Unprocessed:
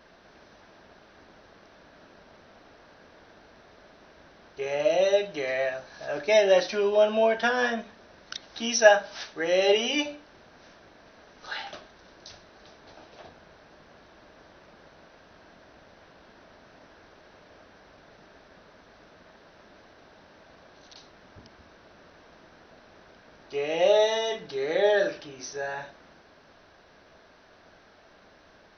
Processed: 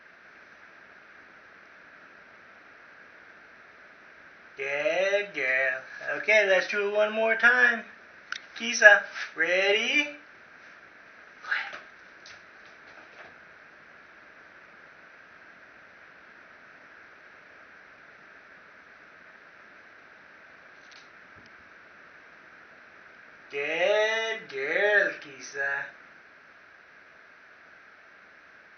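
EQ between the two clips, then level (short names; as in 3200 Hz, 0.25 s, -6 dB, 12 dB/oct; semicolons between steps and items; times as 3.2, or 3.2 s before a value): HPF 130 Hz 6 dB/oct; band shelf 1800 Hz +12.5 dB 1.2 oct; -4.0 dB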